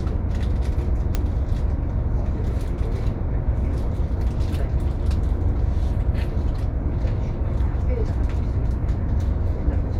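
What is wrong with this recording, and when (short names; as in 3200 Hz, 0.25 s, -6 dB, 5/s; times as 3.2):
1.15 pop -9 dBFS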